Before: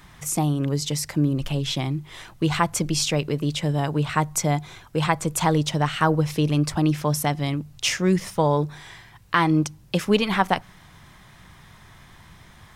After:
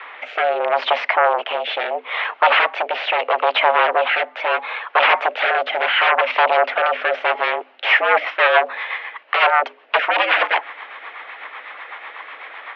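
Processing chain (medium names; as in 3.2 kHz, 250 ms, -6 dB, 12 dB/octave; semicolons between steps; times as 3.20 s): sine folder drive 19 dB, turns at -5 dBFS; rotary cabinet horn 0.75 Hz, later 8 Hz, at 7.47 s; mistuned SSB +110 Hz 450–2800 Hz; trim -1 dB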